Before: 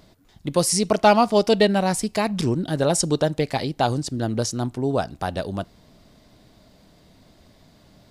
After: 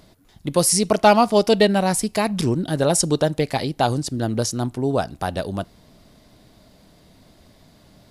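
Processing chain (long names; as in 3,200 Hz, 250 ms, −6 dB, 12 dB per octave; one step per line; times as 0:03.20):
parametric band 11,000 Hz +7 dB 0.36 octaves
level +1.5 dB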